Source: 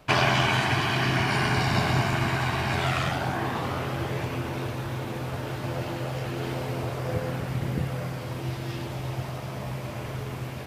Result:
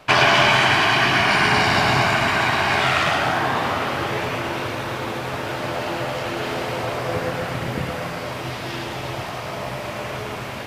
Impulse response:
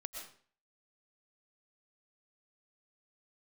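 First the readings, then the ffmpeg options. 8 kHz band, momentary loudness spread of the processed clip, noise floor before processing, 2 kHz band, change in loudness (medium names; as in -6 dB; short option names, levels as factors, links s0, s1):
+7.0 dB, 14 LU, -35 dBFS, +10.0 dB, +7.5 dB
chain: -filter_complex "[0:a]asplit=2[s0][s1];[s1]highpass=f=720:p=1,volume=2.82,asoftclip=type=tanh:threshold=0.355[s2];[s0][s2]amix=inputs=2:normalize=0,lowpass=f=5200:p=1,volume=0.501,asplit=2[s3][s4];[1:a]atrim=start_sample=2205,adelay=111[s5];[s4][s5]afir=irnorm=-1:irlink=0,volume=0.794[s6];[s3][s6]amix=inputs=2:normalize=0,volume=1.68"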